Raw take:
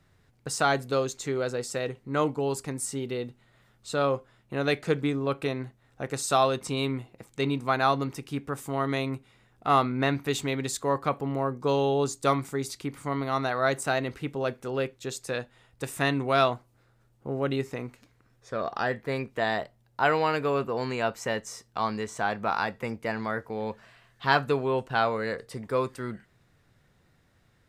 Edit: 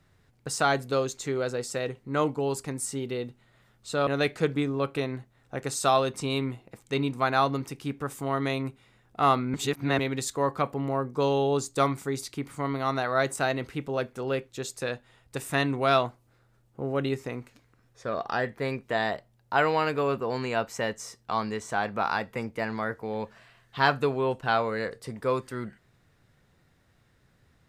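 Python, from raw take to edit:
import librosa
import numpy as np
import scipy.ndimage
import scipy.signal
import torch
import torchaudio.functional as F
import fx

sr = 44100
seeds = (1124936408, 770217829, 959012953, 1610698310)

y = fx.edit(x, sr, fx.cut(start_s=4.07, length_s=0.47),
    fx.reverse_span(start_s=10.01, length_s=0.45), tone=tone)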